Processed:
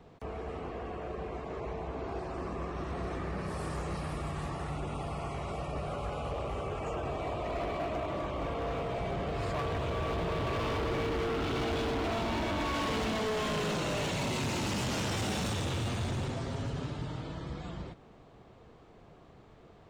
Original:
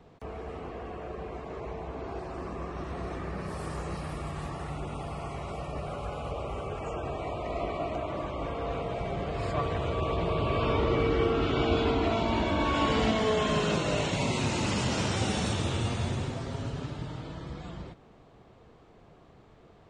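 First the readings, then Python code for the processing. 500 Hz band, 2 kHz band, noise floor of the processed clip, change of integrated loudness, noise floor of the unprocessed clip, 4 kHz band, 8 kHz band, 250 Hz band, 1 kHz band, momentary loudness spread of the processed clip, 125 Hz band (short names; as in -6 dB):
-4.0 dB, -2.5 dB, -56 dBFS, -3.5 dB, -56 dBFS, -3.0 dB, -2.0 dB, -4.0 dB, -3.0 dB, 8 LU, -3.5 dB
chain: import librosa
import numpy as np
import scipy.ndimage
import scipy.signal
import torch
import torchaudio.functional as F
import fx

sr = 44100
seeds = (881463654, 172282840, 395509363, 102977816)

y = np.clip(10.0 ** (30.0 / 20.0) * x, -1.0, 1.0) / 10.0 ** (30.0 / 20.0)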